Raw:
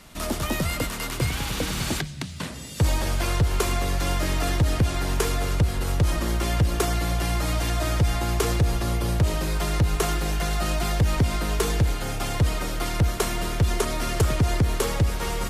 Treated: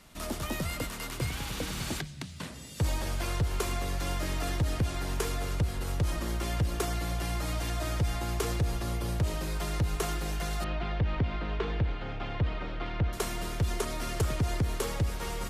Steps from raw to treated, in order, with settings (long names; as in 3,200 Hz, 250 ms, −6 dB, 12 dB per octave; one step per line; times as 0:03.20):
0:10.64–0:13.13: low-pass filter 3,400 Hz 24 dB per octave
level −7.5 dB